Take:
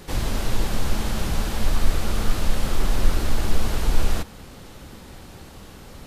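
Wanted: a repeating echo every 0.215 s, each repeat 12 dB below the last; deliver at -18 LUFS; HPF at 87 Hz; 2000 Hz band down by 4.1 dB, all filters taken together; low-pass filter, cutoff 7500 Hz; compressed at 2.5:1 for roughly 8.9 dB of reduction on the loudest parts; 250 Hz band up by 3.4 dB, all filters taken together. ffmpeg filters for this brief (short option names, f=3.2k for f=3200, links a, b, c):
-af "highpass=87,lowpass=7.5k,equalizer=f=250:t=o:g=4.5,equalizer=f=2k:t=o:g=-5.5,acompressor=threshold=-38dB:ratio=2.5,aecho=1:1:215|430|645:0.251|0.0628|0.0157,volume=20.5dB"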